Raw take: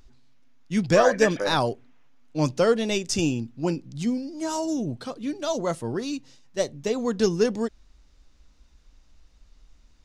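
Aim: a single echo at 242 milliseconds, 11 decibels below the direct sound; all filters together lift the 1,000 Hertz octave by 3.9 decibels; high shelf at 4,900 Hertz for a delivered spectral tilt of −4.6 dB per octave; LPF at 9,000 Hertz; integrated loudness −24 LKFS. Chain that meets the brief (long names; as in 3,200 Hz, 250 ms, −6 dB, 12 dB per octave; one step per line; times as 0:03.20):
low-pass filter 9,000 Hz
parametric band 1,000 Hz +5 dB
high-shelf EQ 4,900 Hz +4.5 dB
single-tap delay 242 ms −11 dB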